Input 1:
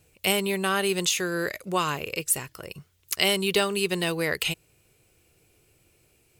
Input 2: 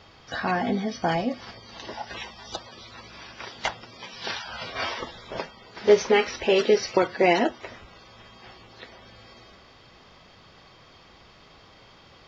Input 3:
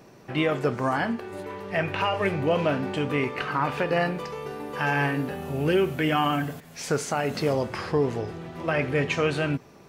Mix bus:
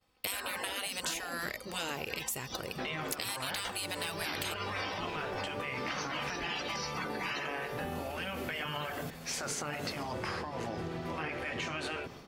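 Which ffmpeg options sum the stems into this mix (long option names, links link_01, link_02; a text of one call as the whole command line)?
ffmpeg -i stem1.wav -i stem2.wav -i stem3.wav -filter_complex "[0:a]volume=0dB[link_01];[1:a]aecho=1:1:3.9:0.79,volume=-5dB[link_02];[2:a]alimiter=limit=-21.5dB:level=0:latency=1,adelay=2500,volume=1.5dB[link_03];[link_01][link_02][link_03]amix=inputs=3:normalize=0,agate=range=-33dB:threshold=-42dB:ratio=3:detection=peak,afftfilt=real='re*lt(hypot(re,im),0.158)':imag='im*lt(hypot(re,im),0.158)':win_size=1024:overlap=0.75,acompressor=threshold=-33dB:ratio=6" out.wav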